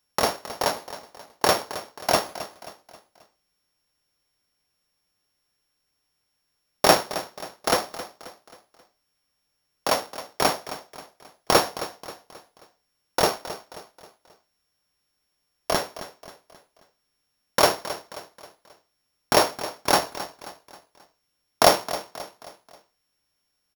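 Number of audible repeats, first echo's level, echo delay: 3, -14.0 dB, 267 ms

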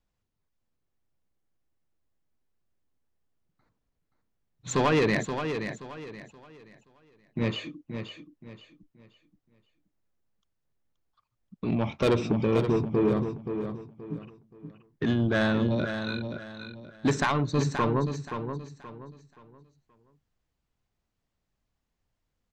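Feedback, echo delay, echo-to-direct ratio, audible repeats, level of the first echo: 31%, 526 ms, -7.5 dB, 3, -8.0 dB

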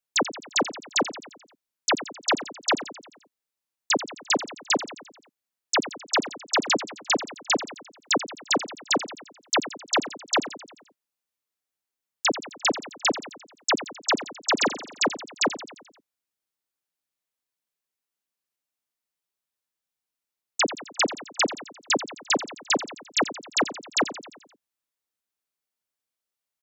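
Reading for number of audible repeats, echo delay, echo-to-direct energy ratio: 5, 87 ms, -11.5 dB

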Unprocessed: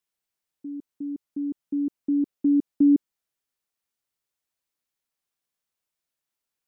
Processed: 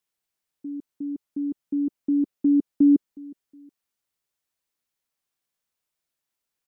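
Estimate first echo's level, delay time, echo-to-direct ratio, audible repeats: -22.5 dB, 365 ms, -22.0 dB, 2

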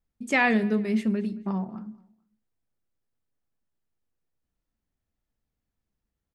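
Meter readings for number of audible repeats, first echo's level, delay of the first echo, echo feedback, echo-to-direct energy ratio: 2, -23.5 dB, 222 ms, 31%, -23.0 dB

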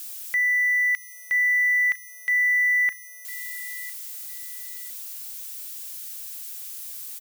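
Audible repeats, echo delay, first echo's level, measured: 2, 1005 ms, -18.0 dB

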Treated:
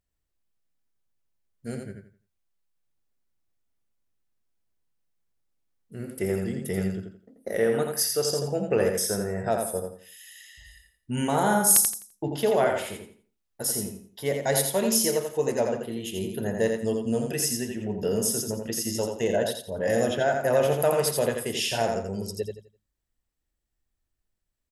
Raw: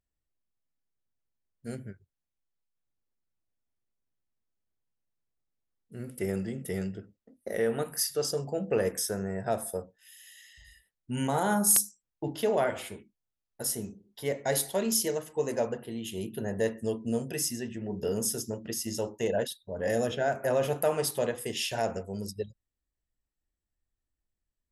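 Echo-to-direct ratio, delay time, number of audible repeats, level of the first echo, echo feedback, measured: -4.5 dB, 85 ms, 3, -5.0 dB, 27%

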